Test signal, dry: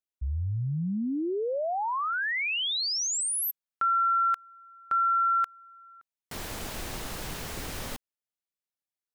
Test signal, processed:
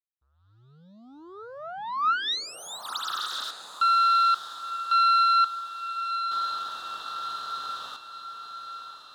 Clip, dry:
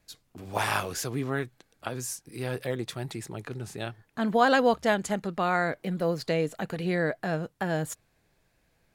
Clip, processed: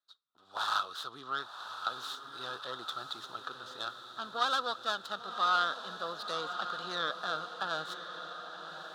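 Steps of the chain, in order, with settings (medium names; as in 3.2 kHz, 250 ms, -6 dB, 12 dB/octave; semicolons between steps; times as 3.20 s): tracing distortion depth 0.44 ms; level rider gain up to 13 dB; waveshaping leveller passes 1; two resonant band-passes 2.2 kHz, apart 1.5 oct; on a send: echo that smears into a reverb 1060 ms, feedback 56%, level -9 dB; on the sum: trim -6 dB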